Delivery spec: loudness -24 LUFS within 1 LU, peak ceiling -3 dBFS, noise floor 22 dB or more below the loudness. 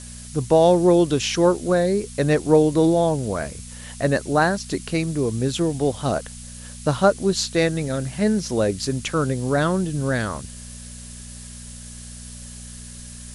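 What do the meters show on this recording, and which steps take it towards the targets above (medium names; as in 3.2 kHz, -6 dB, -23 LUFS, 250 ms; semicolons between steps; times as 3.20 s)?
hum 60 Hz; highest harmonic 240 Hz; hum level -39 dBFS; noise floor -38 dBFS; noise floor target -43 dBFS; loudness -21.0 LUFS; peak level -4.5 dBFS; loudness target -24.0 LUFS
-> de-hum 60 Hz, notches 4; noise print and reduce 6 dB; trim -3 dB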